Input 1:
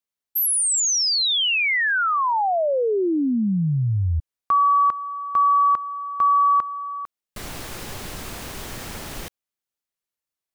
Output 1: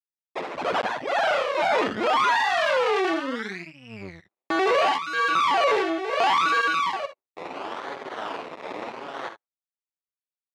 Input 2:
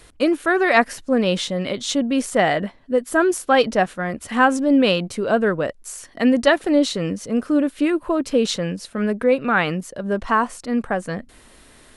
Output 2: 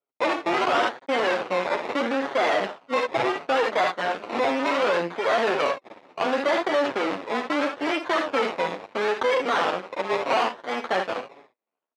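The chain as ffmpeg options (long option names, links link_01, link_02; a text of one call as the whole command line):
ffmpeg -i in.wav -filter_complex "[0:a]agate=range=-40dB:threshold=-39dB:ratio=16:release=253:detection=rms,acrossover=split=520[link_01][link_02];[link_01]aeval=exprs='val(0)*(1-0.7/2+0.7/2*cos(2*PI*2*n/s))':channel_layout=same[link_03];[link_02]aeval=exprs='val(0)*(1-0.7/2-0.7/2*cos(2*PI*2*n/s))':channel_layout=same[link_04];[link_03][link_04]amix=inputs=2:normalize=0,equalizer=frequency=940:width=0.33:gain=13,acrusher=samples=23:mix=1:aa=0.000001:lfo=1:lforange=13.8:lforate=0.72,asplit=2[link_05][link_06];[link_06]aecho=0:1:52|70:0.266|0.224[link_07];[link_05][link_07]amix=inputs=2:normalize=0,flanger=delay=7.1:depth=4.8:regen=6:speed=0.88:shape=sinusoidal,acontrast=70,aeval=exprs='max(val(0),0)':channel_layout=same,acompressor=threshold=-14dB:ratio=4:attack=1.8:release=24:knee=1:detection=peak,highpass=370,lowpass=2900,volume=-1dB" -ar 44100 -c:a libmp3lame -b:a 224k out.mp3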